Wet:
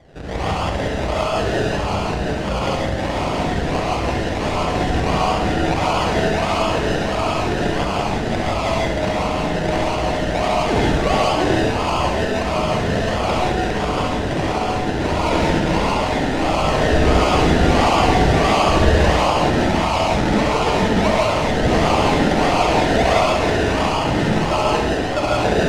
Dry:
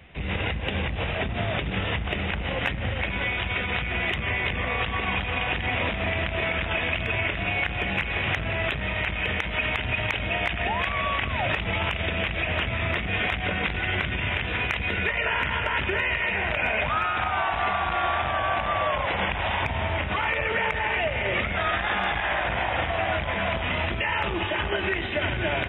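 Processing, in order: tracing distortion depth 0.34 ms; band shelf 900 Hz +11 dB; decimation with a swept rate 32×, swing 60% 1.5 Hz; overloaded stage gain 12 dB; air absorption 92 m; on a send: flutter echo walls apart 11.6 m, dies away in 0.64 s; on the sum: non-linear reverb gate 0.2 s rising, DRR -3.5 dB; gain -3 dB

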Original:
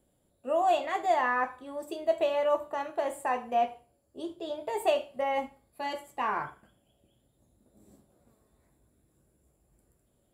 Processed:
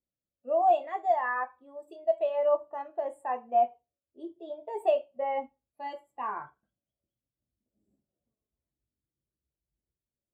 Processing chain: 0.98–2.39 dynamic EQ 260 Hz, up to -6 dB, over -45 dBFS, Q 1; spectral expander 1.5:1

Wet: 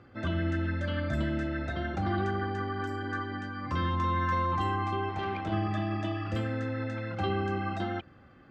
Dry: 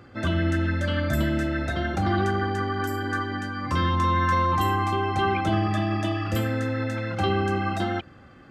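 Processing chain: 5.09–5.52 tube stage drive 19 dB, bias 0.55; air absorption 110 m; gain -6 dB

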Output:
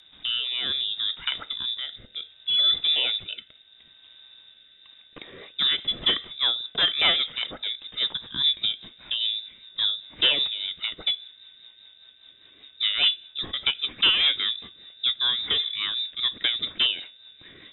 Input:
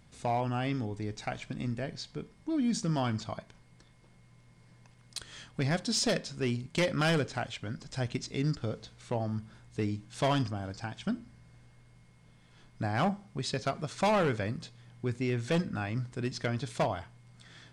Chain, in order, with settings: inverted band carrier 3700 Hz; rotary speaker horn 0.65 Hz, later 5 Hz, at 4.46; gain +8 dB

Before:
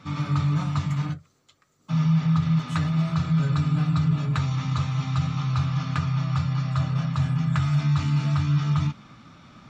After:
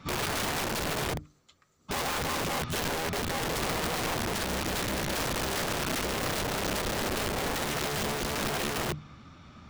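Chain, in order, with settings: octaver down 1 oct, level -2 dB; notches 50/100/150/200/250/300 Hz; vocal rider 2 s; wrapped overs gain 23 dB; gain -3 dB

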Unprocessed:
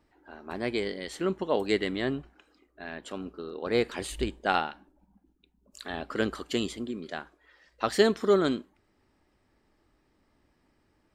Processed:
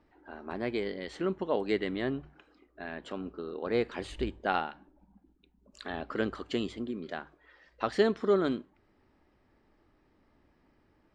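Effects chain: LPF 6400 Hz 12 dB/oct; high shelf 4000 Hz -10 dB; notches 50/100/150 Hz; in parallel at +0.5 dB: compressor, threshold -40 dBFS, peak gain reduction 21.5 dB; on the sum: gain -4 dB

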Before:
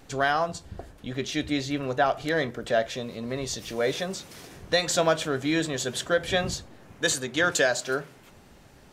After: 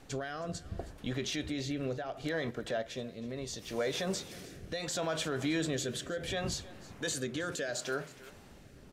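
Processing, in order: limiter -23 dBFS, peak gain reduction 11.5 dB; rotary speaker horn 0.7 Hz; echo 0.319 s -19 dB; 1.97–4.07 upward expander 1.5:1, over -42 dBFS

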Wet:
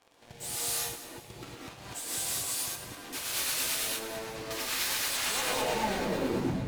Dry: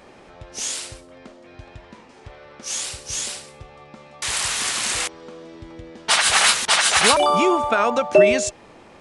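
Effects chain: tape stop at the end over 2.58 s; HPF 130 Hz 6 dB/oct; notches 60/120/180/240/300/360/420/480 Hz; sample leveller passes 5; soft clip -27 dBFS, distortion -6 dB; rotary speaker horn 0.85 Hz, later 6.7 Hz, at 2.22; on a send: thinning echo 0.269 s, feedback 39%, level -13.5 dB; on the sum: non-linear reverb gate 0.34 s rising, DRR -6.5 dB; speed mistake 33 rpm record played at 45 rpm; gain -8 dB

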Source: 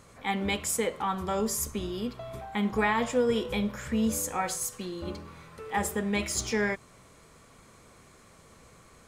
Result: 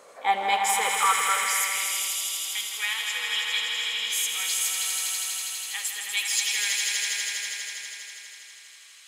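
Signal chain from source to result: swelling echo 81 ms, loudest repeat 5, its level -5.5 dB; high-pass sweep 530 Hz -> 3000 Hz, 0.06–2.2; gain +3 dB

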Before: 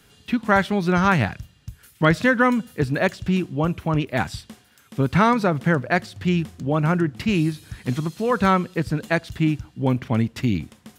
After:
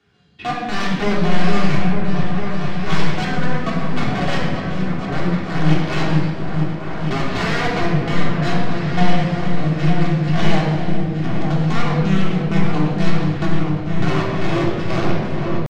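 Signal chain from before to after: HPF 57 Hz 24 dB/oct; dynamic EQ 240 Hz, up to +4 dB, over -33 dBFS, Q 3.7; in parallel at +1.5 dB: compressor 5:1, threshold -26 dBFS, peak gain reduction 14 dB; on the sum: random-step tremolo, depth 80%; wrapped overs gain 15 dB; flange 1.4 Hz, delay 4.8 ms, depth 1.9 ms, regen +55%; tempo 0.7×; air absorption 150 m; on a send: repeats that get brighter 0.452 s, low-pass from 400 Hz, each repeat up 2 oct, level -3 dB; on the sum: shoebox room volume 2000 m³, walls mixed, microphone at 3.4 m; gain -1 dB

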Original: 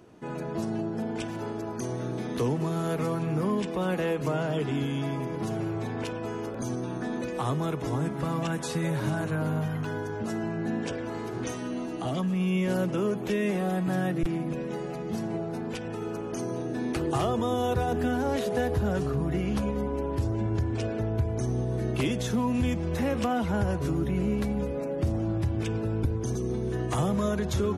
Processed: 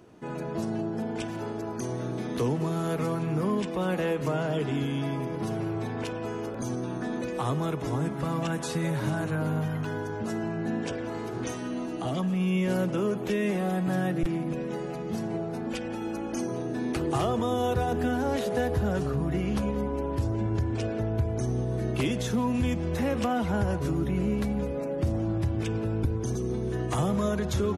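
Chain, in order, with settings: 4.87–5.97 notch 6900 Hz, Q 11; 15.66–16.48 comb 3.6 ms, depth 74%; speakerphone echo 0.17 s, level -16 dB

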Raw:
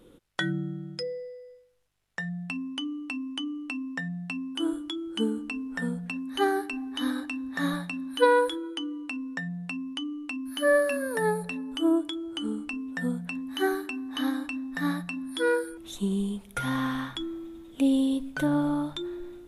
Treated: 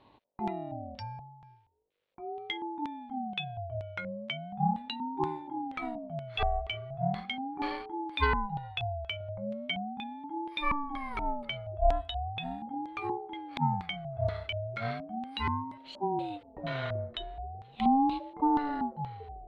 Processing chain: LFO low-pass square 2.1 Hz 340–3000 Hz; 9.2–9.76 comb 4.8 ms, depth 74%; ring modulator with a swept carrier 480 Hz, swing 25%, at 0.38 Hz; gain -4 dB

